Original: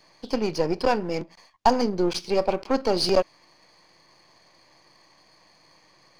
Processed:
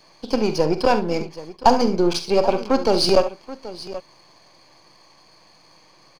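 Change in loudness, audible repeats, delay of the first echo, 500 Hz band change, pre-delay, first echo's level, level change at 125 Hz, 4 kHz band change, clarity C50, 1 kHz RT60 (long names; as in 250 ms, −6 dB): +5.0 dB, 2, 46 ms, +5.0 dB, no reverb audible, −12.5 dB, +5.0 dB, +5.0 dB, no reverb audible, no reverb audible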